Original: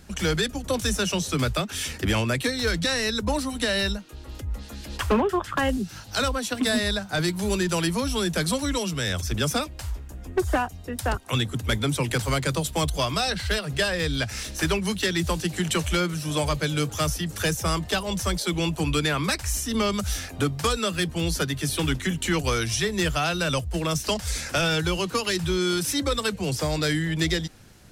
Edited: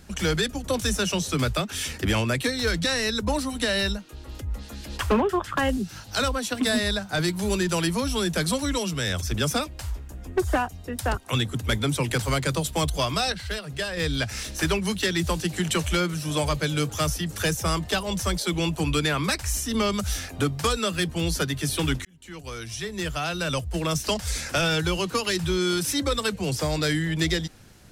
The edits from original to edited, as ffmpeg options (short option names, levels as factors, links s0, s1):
-filter_complex "[0:a]asplit=4[s0][s1][s2][s3];[s0]atrim=end=13.322[s4];[s1]atrim=start=13.318:end=13.972,asetpts=PTS-STARTPTS,volume=0.531[s5];[s2]atrim=start=13.968:end=22.05,asetpts=PTS-STARTPTS,afade=t=out:st=8.078:d=0.004:c=hsin[s6];[s3]atrim=start=22.05,asetpts=PTS-STARTPTS,afade=t=in:d=1.82[s7];[s4][s5]acrossfade=d=0.004:c1=hsin:c2=hsin[s8];[s6][s7]concat=n=2:v=0:a=1[s9];[s8][s9]acrossfade=d=0.004:c1=hsin:c2=hsin"